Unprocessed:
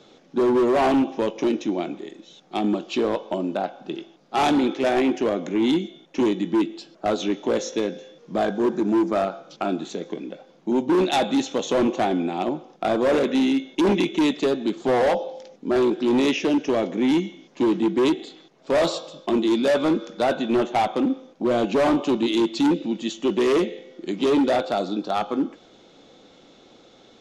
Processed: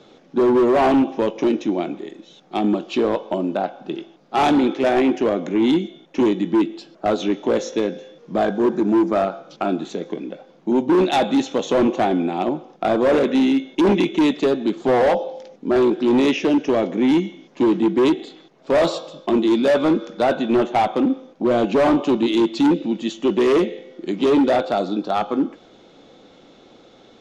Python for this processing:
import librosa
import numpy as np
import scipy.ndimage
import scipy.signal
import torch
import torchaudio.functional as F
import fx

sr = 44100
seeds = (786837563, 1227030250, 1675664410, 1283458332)

y = fx.high_shelf(x, sr, hz=4000.0, db=-7.0)
y = y * 10.0 ** (3.5 / 20.0)